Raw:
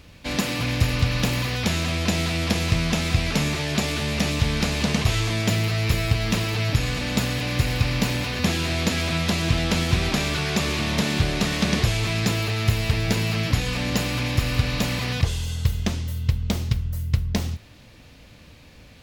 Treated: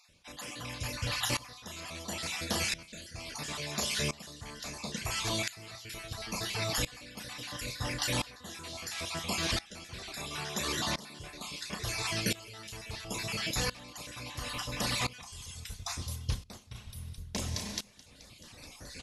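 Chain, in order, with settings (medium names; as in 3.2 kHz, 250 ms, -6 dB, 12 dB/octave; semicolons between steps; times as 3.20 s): random holes in the spectrogram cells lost 33%; brick-wall FIR low-pass 12 kHz; spectral replace 16.79–17.19 s, 650–8800 Hz both; on a send: thinning echo 215 ms, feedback 66%, high-pass 950 Hz, level -14 dB; on the sum: dynamic bell 1 kHz, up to +6 dB, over -43 dBFS, Q 0.78; reverb removal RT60 0.69 s; tone controls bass -4 dB, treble +10 dB; doubling 33 ms -11 dB; Schroeder reverb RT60 1.8 s, combs from 30 ms, DRR 14 dB; reverse; compression 6:1, threshold -37 dBFS, peak gain reduction 19.5 dB; reverse; sawtooth tremolo in dB swelling 0.73 Hz, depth 20 dB; trim +9 dB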